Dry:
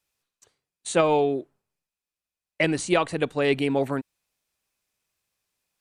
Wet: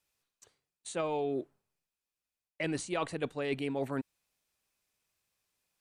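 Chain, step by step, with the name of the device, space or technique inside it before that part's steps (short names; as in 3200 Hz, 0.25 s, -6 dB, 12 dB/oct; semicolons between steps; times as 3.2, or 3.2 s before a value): compression on the reversed sound (reverse; compressor 5:1, threshold -29 dBFS, peak gain reduction 12.5 dB; reverse); gain -2 dB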